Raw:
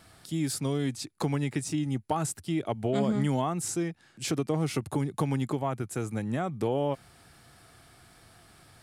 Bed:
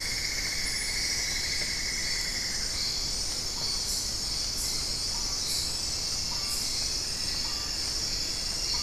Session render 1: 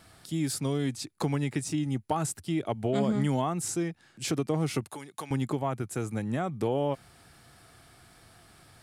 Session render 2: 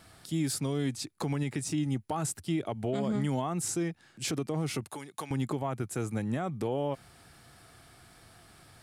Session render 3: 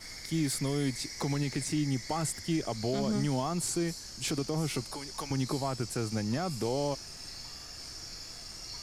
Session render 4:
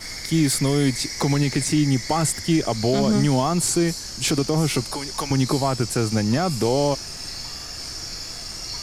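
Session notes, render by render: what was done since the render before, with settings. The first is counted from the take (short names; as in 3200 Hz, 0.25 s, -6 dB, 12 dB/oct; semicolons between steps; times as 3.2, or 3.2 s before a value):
4.86–5.31 HPF 1500 Hz 6 dB/oct
limiter -22 dBFS, peak gain reduction 6.5 dB
add bed -13.5 dB
gain +11 dB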